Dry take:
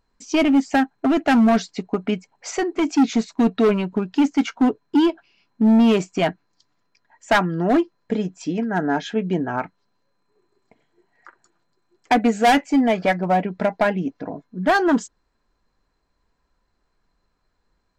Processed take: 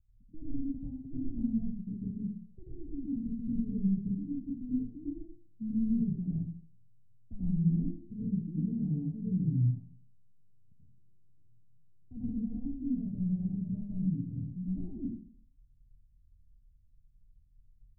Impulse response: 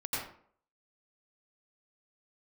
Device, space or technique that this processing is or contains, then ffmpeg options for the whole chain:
club heard from the street: -filter_complex "[0:a]alimiter=limit=-16dB:level=0:latency=1,lowpass=f=130:w=0.5412,lowpass=f=130:w=1.3066[a];[1:a]atrim=start_sample=2205[b];[a][b]afir=irnorm=-1:irlink=0,asettb=1/sr,asplit=3[c][d][e];[c]atrim=end=8.174[f];[d]atrim=start=8.17:end=9.48,asetpts=PTS-STARTPTS,afade=t=in:d=0.004:c=qsin,afade=t=out:st=1.306:d=0.004:c=qsin,equalizer=f=520:w=0.98:g=6[g];[e]atrim=start=9.476[h];[f][g]acrossfade=d=0.004:c1=hsin:c2=qsin[i];[i][h]acrossfade=d=0.004:c1=qsin:c2=hsin,volume=5.5dB"

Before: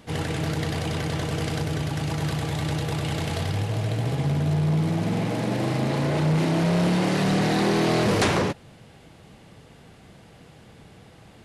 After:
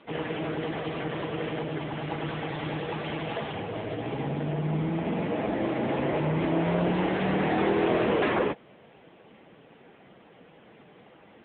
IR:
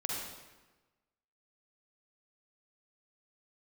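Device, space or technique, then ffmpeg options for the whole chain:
telephone: -filter_complex "[0:a]highpass=75,asettb=1/sr,asplit=3[a][b][c];[a]atrim=end=2.034[d];[b]atrim=start=2.03:end=3.56,asetpts=PTS-STARTPTS,afade=t=in:d=0.004:c=qsin,afade=t=out:st=1.526:d=0.004:c=qsin,highshelf=f=2.1k:g=2.5[e];[c]atrim=start=3.556[f];[d][e]acrossfade=d=0.004:c1=hsin:c2=qsin[g];[g][f]acrossfade=d=0.004:c1=qsin:c2=hsin,highpass=250,lowpass=3.2k,asoftclip=type=tanh:threshold=-15.5dB,volume=2.5dB" -ar 8000 -c:a libopencore_amrnb -b:a 6700

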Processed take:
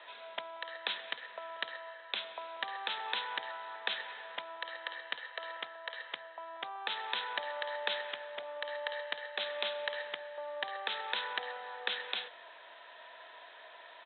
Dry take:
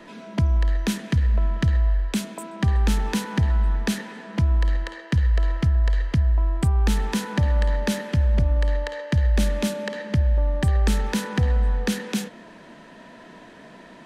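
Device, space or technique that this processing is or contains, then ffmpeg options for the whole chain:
musical greeting card: -af "aresample=8000,aresample=44100,highpass=f=620:w=0.5412,highpass=f=620:w=1.3066,equalizer=f=3.9k:t=o:w=0.4:g=12,volume=-4.5dB"

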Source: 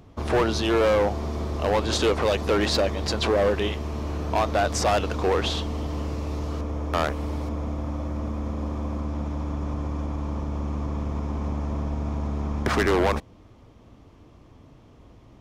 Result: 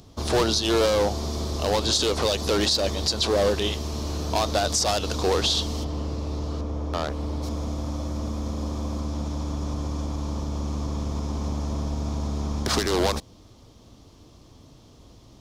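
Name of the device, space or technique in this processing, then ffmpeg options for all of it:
over-bright horn tweeter: -filter_complex "[0:a]highshelf=f=3.1k:t=q:w=1.5:g=10.5,alimiter=limit=-12dB:level=0:latency=1:release=113,asplit=3[a][b][c];[a]afade=t=out:st=5.83:d=0.02[d];[b]lowpass=f=1.8k:p=1,afade=t=in:st=5.83:d=0.02,afade=t=out:st=7.42:d=0.02[e];[c]afade=t=in:st=7.42:d=0.02[f];[d][e][f]amix=inputs=3:normalize=0"

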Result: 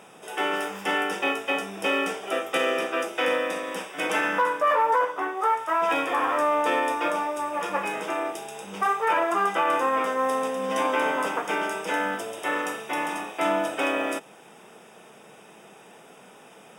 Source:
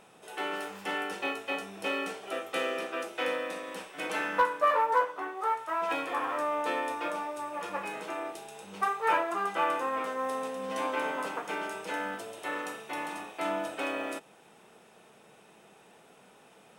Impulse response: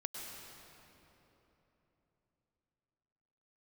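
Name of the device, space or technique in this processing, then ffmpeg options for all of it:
PA system with an anti-feedback notch: -af "highpass=120,asuperstop=centerf=4200:order=4:qfactor=5.4,alimiter=limit=-22dB:level=0:latency=1:release=21,volume=8dB"

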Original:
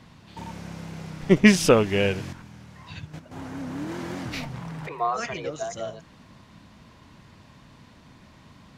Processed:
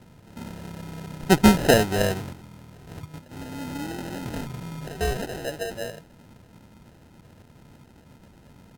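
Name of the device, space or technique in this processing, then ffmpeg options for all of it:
crushed at another speed: -af "asetrate=55125,aresample=44100,acrusher=samples=31:mix=1:aa=0.000001,asetrate=35280,aresample=44100"

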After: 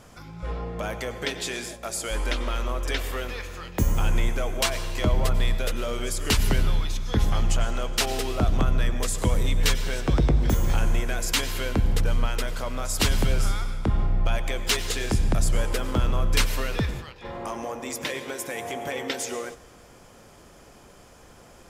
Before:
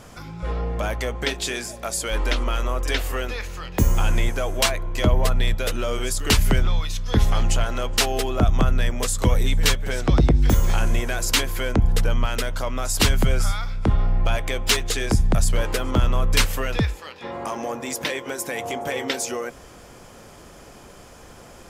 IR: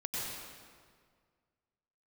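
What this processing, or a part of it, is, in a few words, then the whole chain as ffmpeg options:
keyed gated reverb: -filter_complex "[0:a]asplit=3[a][b][c];[1:a]atrim=start_sample=2205[d];[b][d]afir=irnorm=-1:irlink=0[e];[c]apad=whole_len=956602[f];[e][f]sidechaingate=range=-14dB:threshold=-34dB:ratio=16:detection=peak,volume=-10.5dB[g];[a][g]amix=inputs=2:normalize=0,volume=-6dB"

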